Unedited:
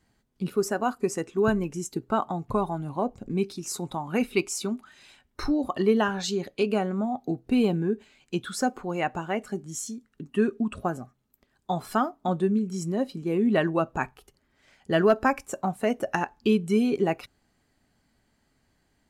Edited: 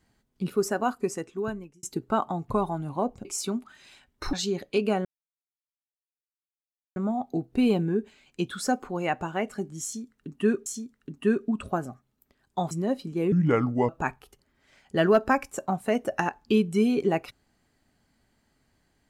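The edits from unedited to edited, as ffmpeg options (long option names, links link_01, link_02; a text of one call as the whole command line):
ffmpeg -i in.wav -filter_complex "[0:a]asplit=9[link_01][link_02][link_03][link_04][link_05][link_06][link_07][link_08][link_09];[link_01]atrim=end=1.83,asetpts=PTS-STARTPTS,afade=type=out:start_time=0.88:duration=0.95[link_10];[link_02]atrim=start=1.83:end=3.252,asetpts=PTS-STARTPTS,afade=type=in:duration=0.004:curve=hsin[link_11];[link_03]atrim=start=4.418:end=5.502[link_12];[link_04]atrim=start=6.178:end=6.9,asetpts=PTS-STARTPTS,afade=type=out:start_time=0.718:duration=0.004:curve=hsin,apad=pad_dur=1.91[link_13];[link_05]atrim=start=6.9:end=10.602,asetpts=PTS-STARTPTS,afade=type=in:duration=0.004:curve=hsin[link_14];[link_06]atrim=start=9.778:end=11.832[link_15];[link_07]atrim=start=12.808:end=13.424[link_16];[link_08]atrim=start=13.42:end=13.84,asetpts=PTS-STARTPTS,asetrate=32634,aresample=44100[link_17];[link_09]atrim=start=13.836[link_18];[link_10][link_11]concat=n=2:v=0:a=1[link_19];[link_19][link_12]acrossfade=duration=0.004:curve1=hsin:curve2=hsin[link_20];[link_13][link_14]concat=n=2:v=0:a=1[link_21];[link_20][link_21]acrossfade=duration=0.004:curve1=hsin:curve2=hsin[link_22];[link_22][link_15]acrossfade=duration=0.004:curve1=hsin:curve2=hsin[link_23];[link_23][link_16]acrossfade=duration=0.004:curve1=hsin:curve2=hsin[link_24];[link_24][link_17]acrossfade=duration=0.004:curve1=hsin:curve2=hsin[link_25];[link_25][link_18]acrossfade=duration=0.004:curve1=hsin:curve2=hsin" out.wav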